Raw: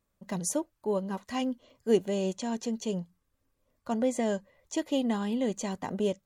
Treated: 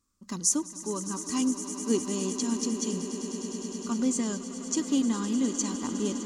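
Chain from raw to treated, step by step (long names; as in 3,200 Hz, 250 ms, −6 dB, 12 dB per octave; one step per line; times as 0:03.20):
drawn EQ curve 110 Hz 0 dB, 150 Hz −8 dB, 270 Hz +6 dB, 660 Hz −16 dB, 1,200 Hz +6 dB, 1,700 Hz −5 dB, 3,600 Hz 0 dB, 5,200 Hz +10 dB, 7,800 Hz +10 dB, 12,000 Hz −2 dB
on a send: echo that builds up and dies away 102 ms, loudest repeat 8, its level −15 dB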